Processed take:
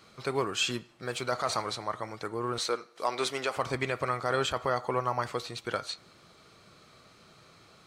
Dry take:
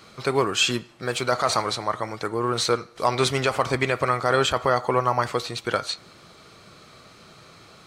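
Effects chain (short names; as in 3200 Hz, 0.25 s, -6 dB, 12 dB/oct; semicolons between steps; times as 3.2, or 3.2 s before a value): 2.58–3.57 HPF 290 Hz 12 dB/oct; gain -8 dB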